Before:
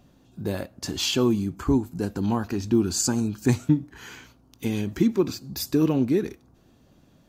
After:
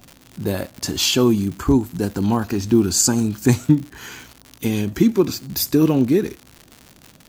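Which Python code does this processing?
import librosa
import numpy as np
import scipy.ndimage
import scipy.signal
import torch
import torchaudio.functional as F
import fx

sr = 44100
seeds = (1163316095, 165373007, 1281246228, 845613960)

y = fx.high_shelf(x, sr, hz=8700.0, db=8.0)
y = fx.dmg_crackle(y, sr, seeds[0], per_s=140.0, level_db=-34.0)
y = y * librosa.db_to_amplitude(5.5)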